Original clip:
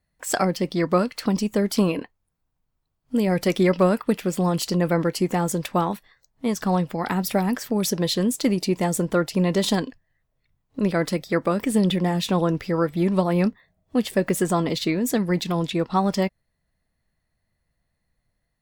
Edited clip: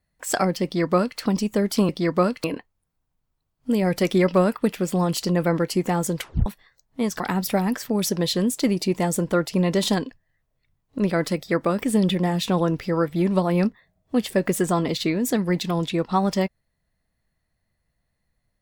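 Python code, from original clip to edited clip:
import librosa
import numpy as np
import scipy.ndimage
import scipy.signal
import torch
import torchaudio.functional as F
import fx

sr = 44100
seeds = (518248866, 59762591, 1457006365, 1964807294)

y = fx.edit(x, sr, fx.duplicate(start_s=0.64, length_s=0.55, to_s=1.89),
    fx.tape_stop(start_s=5.62, length_s=0.29),
    fx.cut(start_s=6.65, length_s=0.36), tone=tone)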